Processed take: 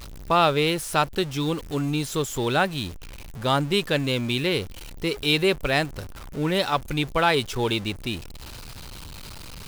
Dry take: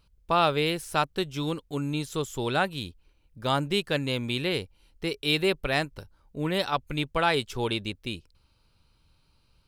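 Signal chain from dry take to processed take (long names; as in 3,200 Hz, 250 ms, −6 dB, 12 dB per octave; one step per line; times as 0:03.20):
converter with a step at zero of −36.5 dBFS
level +3 dB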